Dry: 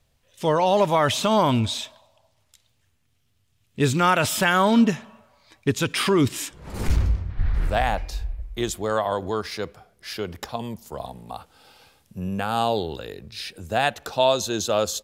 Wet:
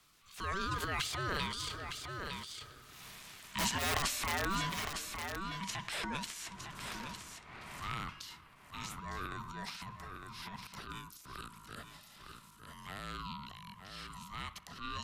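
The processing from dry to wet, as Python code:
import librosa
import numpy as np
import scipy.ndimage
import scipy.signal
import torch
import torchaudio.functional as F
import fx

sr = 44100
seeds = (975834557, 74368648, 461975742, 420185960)

p1 = fx.doppler_pass(x, sr, speed_mps=28, closest_m=4.6, pass_at_s=3.06)
p2 = scipy.signal.sosfilt(scipy.signal.butter(12, 370.0, 'highpass', fs=sr, output='sos'), p1)
p3 = fx.notch(p2, sr, hz=1100.0, q=15.0)
p4 = (np.mod(10.0 ** (29.0 / 20.0) * p3 + 1.0, 2.0) - 1.0) / 10.0 ** (29.0 / 20.0)
p5 = p4 * np.sin(2.0 * np.pi * 580.0 * np.arange(len(p4)) / sr)
p6 = fx.transient(p5, sr, attack_db=-9, sustain_db=11)
p7 = p6 + fx.echo_single(p6, sr, ms=907, db=-13.5, dry=0)
p8 = fx.band_squash(p7, sr, depth_pct=70)
y = p8 * librosa.db_to_amplitude(13.5)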